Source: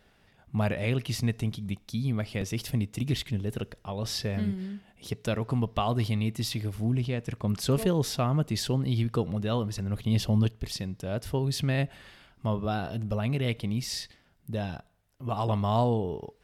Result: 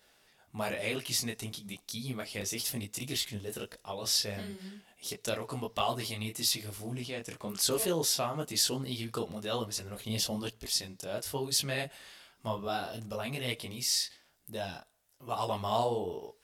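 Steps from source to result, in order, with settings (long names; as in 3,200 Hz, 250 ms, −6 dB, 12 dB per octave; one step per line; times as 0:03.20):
bass and treble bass −13 dB, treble +11 dB
micro pitch shift up and down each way 36 cents
level +1.5 dB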